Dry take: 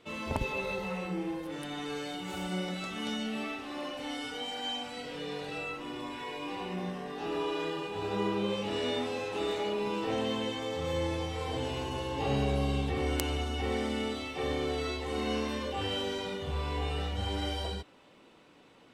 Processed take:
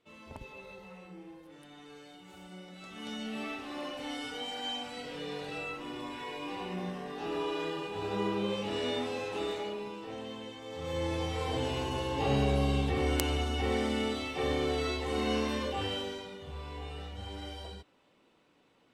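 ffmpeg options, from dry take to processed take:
ffmpeg -i in.wav -af "volume=10.5dB,afade=type=in:start_time=2.71:duration=0.82:silence=0.223872,afade=type=out:start_time=9.33:duration=0.64:silence=0.354813,afade=type=in:start_time=10.63:duration=0.66:silence=0.266073,afade=type=out:start_time=15.64:duration=0.64:silence=0.316228" out.wav

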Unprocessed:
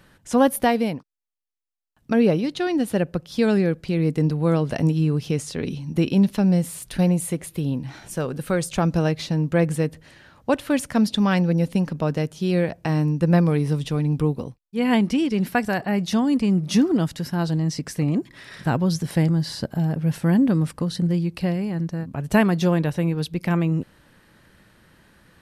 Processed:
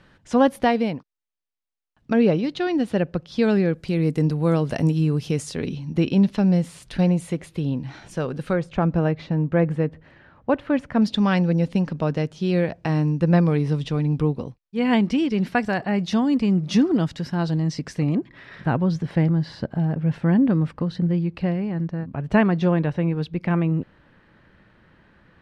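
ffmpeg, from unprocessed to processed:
ffmpeg -i in.wav -af "asetnsamples=nb_out_samples=441:pad=0,asendcmd='3.75 lowpass f 11000;5.66 lowpass f 5100;8.53 lowpass f 2000;11.02 lowpass f 5100;18.15 lowpass f 2700',lowpass=4800" out.wav

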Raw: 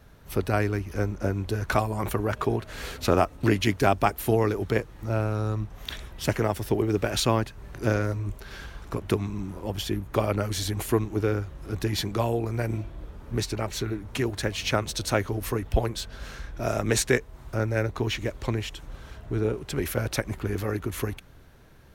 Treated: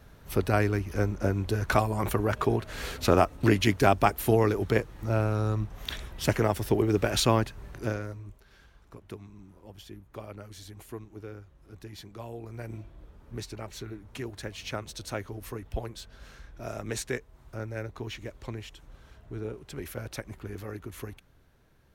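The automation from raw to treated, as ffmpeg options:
ffmpeg -i in.wav -af "volume=7dB,afade=type=out:start_time=7.56:duration=0.41:silence=0.354813,afade=type=out:start_time=7.97:duration=0.49:silence=0.398107,afade=type=in:start_time=12.13:duration=0.65:silence=0.446684" out.wav

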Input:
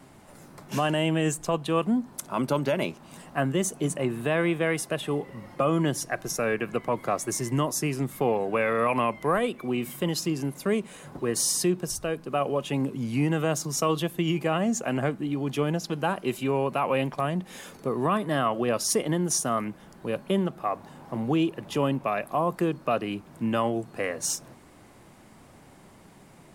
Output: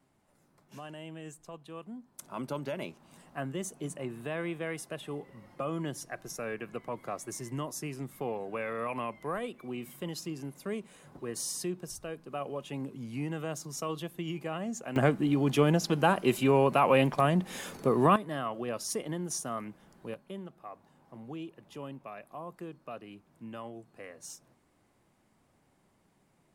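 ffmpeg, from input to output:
ffmpeg -i in.wav -af "asetnsamples=nb_out_samples=441:pad=0,asendcmd='2.19 volume volume -10.5dB;14.96 volume volume 2dB;18.16 volume volume -9.5dB;20.14 volume volume -17dB',volume=-19.5dB" out.wav

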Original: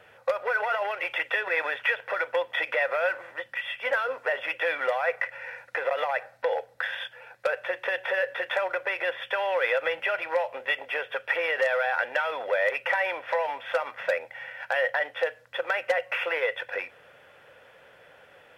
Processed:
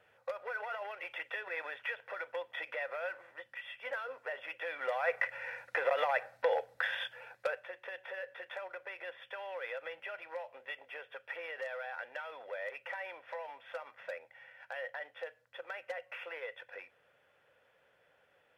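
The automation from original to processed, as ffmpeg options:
ffmpeg -i in.wav -af "volume=-3.5dB,afade=type=in:start_time=4.72:duration=0.53:silence=0.334965,afade=type=out:start_time=7.23:duration=0.45:silence=0.237137" out.wav

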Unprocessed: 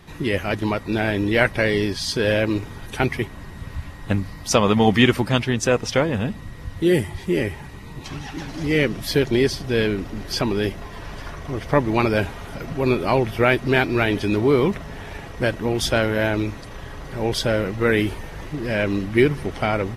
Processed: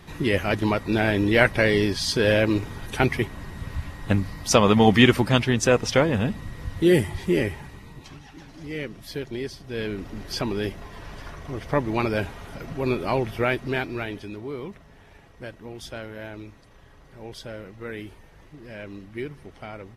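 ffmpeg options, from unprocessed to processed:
ffmpeg -i in.wav -af "volume=8dB,afade=type=out:start_time=7.27:duration=0.94:silence=0.223872,afade=type=in:start_time=9.65:duration=0.47:silence=0.398107,afade=type=out:start_time=13.3:duration=1.06:silence=0.266073" out.wav

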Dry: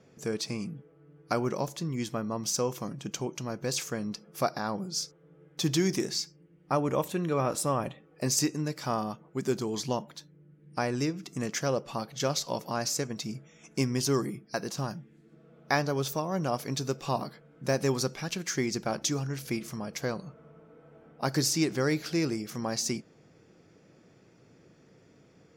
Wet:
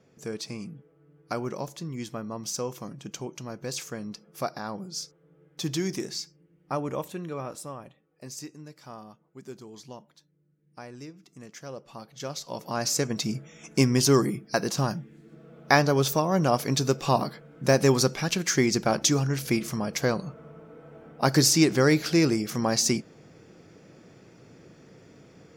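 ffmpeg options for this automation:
ffmpeg -i in.wav -af "volume=17.5dB,afade=type=out:start_time=6.81:duration=1.03:silence=0.298538,afade=type=in:start_time=11.55:duration=0.93:silence=0.398107,afade=type=in:start_time=12.48:duration=0.69:silence=0.251189" out.wav

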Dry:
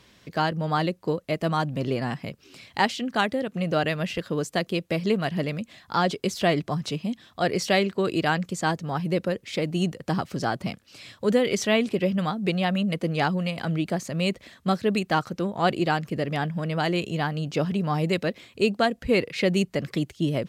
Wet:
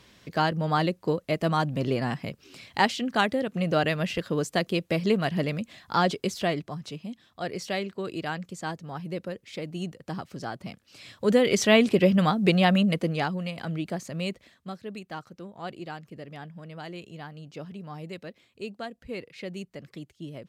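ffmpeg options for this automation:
ffmpeg -i in.wav -af "volume=12.5dB,afade=type=out:start_time=6.03:duration=0.68:silence=0.375837,afade=type=in:start_time=10.67:duration=1.2:silence=0.237137,afade=type=out:start_time=12.72:duration=0.55:silence=0.354813,afade=type=out:start_time=14.17:duration=0.54:silence=0.334965" out.wav

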